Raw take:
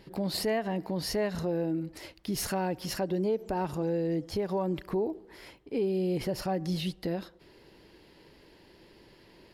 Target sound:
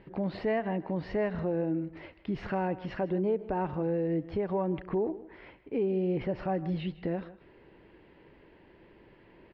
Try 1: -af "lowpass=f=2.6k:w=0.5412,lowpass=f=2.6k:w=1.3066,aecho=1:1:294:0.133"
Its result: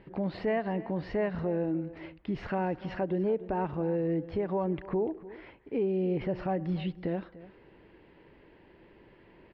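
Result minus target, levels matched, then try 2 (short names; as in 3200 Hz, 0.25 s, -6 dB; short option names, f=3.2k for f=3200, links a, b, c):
echo 0.137 s late
-af "lowpass=f=2.6k:w=0.5412,lowpass=f=2.6k:w=1.3066,aecho=1:1:157:0.133"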